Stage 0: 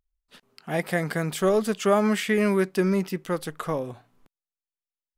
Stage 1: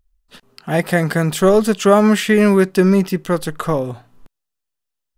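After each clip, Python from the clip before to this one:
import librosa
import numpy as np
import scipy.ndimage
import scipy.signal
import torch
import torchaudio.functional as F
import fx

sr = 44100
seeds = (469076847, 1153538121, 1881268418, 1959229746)

y = fx.low_shelf(x, sr, hz=100.0, db=9.0)
y = fx.notch(y, sr, hz=2200.0, q=12.0)
y = y * librosa.db_to_amplitude(8.5)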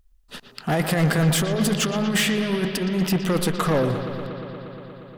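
y = fx.over_compress(x, sr, threshold_db=-17.0, ratio=-0.5)
y = 10.0 ** (-16.5 / 20.0) * np.tanh(y / 10.0 ** (-16.5 / 20.0))
y = fx.echo_bbd(y, sr, ms=118, stages=4096, feedback_pct=84, wet_db=-11.0)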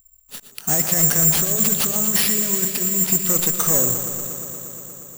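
y = fx.block_float(x, sr, bits=5)
y = (np.kron(y[::6], np.eye(6)[0]) * 6)[:len(y)]
y = y * librosa.db_to_amplitude(-5.0)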